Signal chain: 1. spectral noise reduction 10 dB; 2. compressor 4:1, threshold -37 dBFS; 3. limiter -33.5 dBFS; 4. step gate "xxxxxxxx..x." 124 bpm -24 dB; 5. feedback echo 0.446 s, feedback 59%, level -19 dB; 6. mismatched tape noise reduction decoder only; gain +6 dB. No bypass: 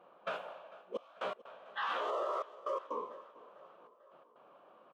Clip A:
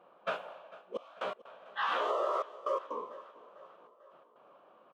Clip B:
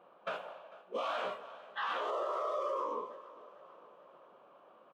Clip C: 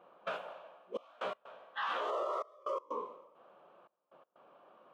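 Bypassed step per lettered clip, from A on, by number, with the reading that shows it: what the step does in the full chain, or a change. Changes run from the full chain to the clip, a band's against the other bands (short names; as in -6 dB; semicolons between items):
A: 3, crest factor change +2.5 dB; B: 4, crest factor change -2.0 dB; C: 5, momentary loudness spread change -7 LU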